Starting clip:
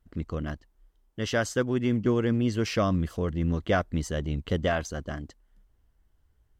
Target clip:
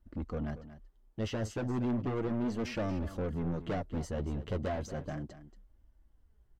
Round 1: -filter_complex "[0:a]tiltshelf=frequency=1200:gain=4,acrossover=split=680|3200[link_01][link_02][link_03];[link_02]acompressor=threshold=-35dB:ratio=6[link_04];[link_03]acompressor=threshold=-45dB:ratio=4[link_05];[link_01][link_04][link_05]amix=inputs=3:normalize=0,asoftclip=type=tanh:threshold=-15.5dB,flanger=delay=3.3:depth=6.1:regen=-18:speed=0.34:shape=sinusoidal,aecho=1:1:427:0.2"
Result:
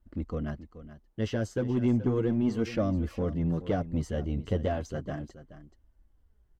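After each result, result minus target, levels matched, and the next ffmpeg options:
echo 195 ms late; soft clipping: distortion −11 dB
-filter_complex "[0:a]tiltshelf=frequency=1200:gain=4,acrossover=split=680|3200[link_01][link_02][link_03];[link_02]acompressor=threshold=-35dB:ratio=6[link_04];[link_03]acompressor=threshold=-45dB:ratio=4[link_05];[link_01][link_04][link_05]amix=inputs=3:normalize=0,asoftclip=type=tanh:threshold=-15.5dB,flanger=delay=3.3:depth=6.1:regen=-18:speed=0.34:shape=sinusoidal,aecho=1:1:232:0.2"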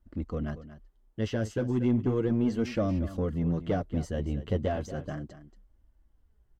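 soft clipping: distortion −11 dB
-filter_complex "[0:a]tiltshelf=frequency=1200:gain=4,acrossover=split=680|3200[link_01][link_02][link_03];[link_02]acompressor=threshold=-35dB:ratio=6[link_04];[link_03]acompressor=threshold=-45dB:ratio=4[link_05];[link_01][link_04][link_05]amix=inputs=3:normalize=0,asoftclip=type=tanh:threshold=-27dB,flanger=delay=3.3:depth=6.1:regen=-18:speed=0.34:shape=sinusoidal,aecho=1:1:232:0.2"

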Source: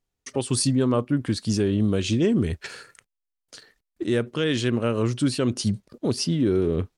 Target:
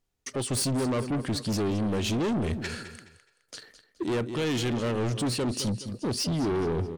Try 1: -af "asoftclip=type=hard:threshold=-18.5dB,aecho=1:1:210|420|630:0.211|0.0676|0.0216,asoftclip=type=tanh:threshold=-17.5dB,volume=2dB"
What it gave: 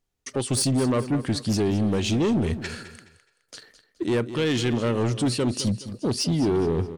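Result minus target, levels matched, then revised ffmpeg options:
soft clipping: distortion −11 dB
-af "asoftclip=type=hard:threshold=-18.5dB,aecho=1:1:210|420|630:0.211|0.0676|0.0216,asoftclip=type=tanh:threshold=-26.5dB,volume=2dB"

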